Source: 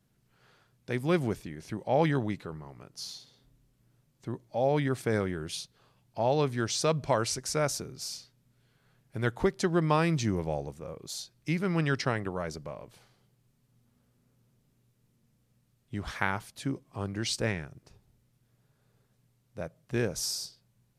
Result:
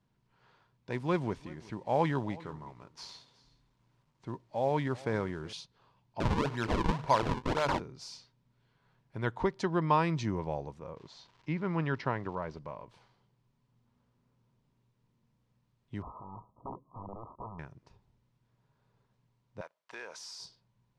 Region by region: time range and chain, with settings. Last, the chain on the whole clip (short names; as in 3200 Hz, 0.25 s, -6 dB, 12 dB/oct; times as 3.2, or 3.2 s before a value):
0.9–5.53 CVSD 64 kbps + echo 0.372 s -21 dB
6.2–7.8 high shelf 2000 Hz +7.5 dB + notches 50/100/150/200/250/300/350/400/450/500 Hz + decimation with a swept rate 39×, swing 160% 1.9 Hz
10.95–12.58 high shelf 4000 Hz -12 dB + crackle 450/s -45 dBFS + LPF 5800 Hz
16.02–17.59 compressor, threshold -33 dBFS + wrapped overs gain 32.5 dB + brick-wall FIR low-pass 1300 Hz
19.61–20.4 HPF 890 Hz + compressor 2.5:1, threshold -46 dBFS + sample leveller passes 2
whole clip: LPF 4800 Hz 12 dB/oct; bell 970 Hz +11.5 dB 0.28 oct; gain -4 dB